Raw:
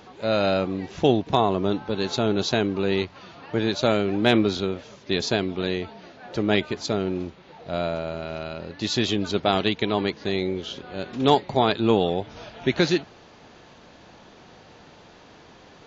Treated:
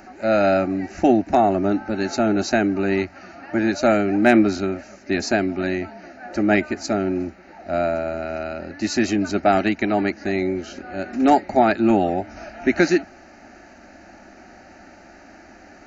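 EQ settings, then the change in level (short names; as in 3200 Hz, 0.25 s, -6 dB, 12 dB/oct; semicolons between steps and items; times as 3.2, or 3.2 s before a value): fixed phaser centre 690 Hz, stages 8; +7.0 dB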